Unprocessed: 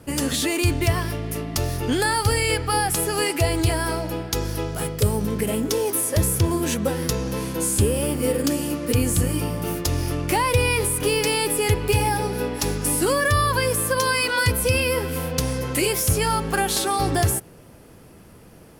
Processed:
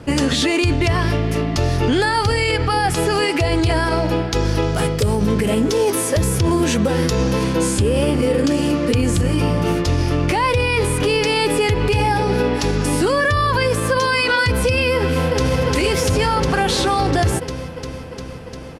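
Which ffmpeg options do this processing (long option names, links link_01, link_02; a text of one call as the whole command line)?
ffmpeg -i in.wav -filter_complex "[0:a]asettb=1/sr,asplit=3[link_01][link_02][link_03];[link_01]atrim=end=4.624[link_04];[link_02]atrim=start=4.62:end=7.44,asetpts=PTS-STARTPTS,afade=type=in:duration=0.004:curve=qsin,afade=type=out:start_time=2.816:duration=0.004:curve=qsin,highshelf=frequency=8300:gain=7.5[link_05];[link_03]atrim=start=7.436[link_06];[link_04][link_05]acrossfade=duration=0.004:curve1=hsin:curve2=qsin[link_07];[link_07][link_06]acrossfade=duration=0.004:curve1=qsin:curve2=hsin,asplit=2[link_08][link_09];[link_09]afade=type=in:start_time=14.96:duration=0.01,afade=type=out:start_time=15.58:duration=0.01,aecho=0:1:350|700|1050|1400|1750|2100|2450|2800|3150|3500|3850|4200:0.891251|0.668438|0.501329|0.375996|0.281997|0.211498|0.158624|0.118968|0.0892257|0.0669193|0.0501895|0.0376421[link_10];[link_08][link_10]amix=inputs=2:normalize=0,lowpass=5300,alimiter=level_in=17.5dB:limit=-1dB:release=50:level=0:latency=1,volume=-8dB" out.wav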